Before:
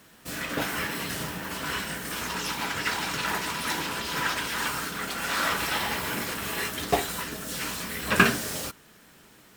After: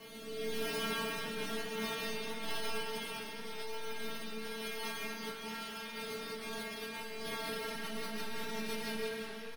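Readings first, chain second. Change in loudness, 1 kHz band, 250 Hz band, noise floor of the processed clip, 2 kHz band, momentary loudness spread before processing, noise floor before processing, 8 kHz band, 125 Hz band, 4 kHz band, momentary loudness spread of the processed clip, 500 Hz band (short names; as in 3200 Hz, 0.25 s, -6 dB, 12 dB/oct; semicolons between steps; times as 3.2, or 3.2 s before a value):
-11.5 dB, -13.0 dB, -9.5 dB, -45 dBFS, -13.0 dB, 7 LU, -55 dBFS, -14.5 dB, -15.0 dB, -9.5 dB, 6 LU, -5.0 dB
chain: time blur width 0.98 s; band shelf 2000 Hz -11 dB; comb 6.7 ms, depth 52%; careless resampling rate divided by 6×, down none, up hold; metallic resonator 220 Hz, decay 0.76 s, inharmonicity 0.002; negative-ratio compressor -55 dBFS, ratio -0.5; rotary speaker horn 1 Hz, later 6 Hz, at 7.02; digital reverb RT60 1.8 s, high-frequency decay 0.7×, pre-delay 90 ms, DRR 0 dB; warbling echo 0.415 s, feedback 58%, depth 86 cents, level -14 dB; gain +15 dB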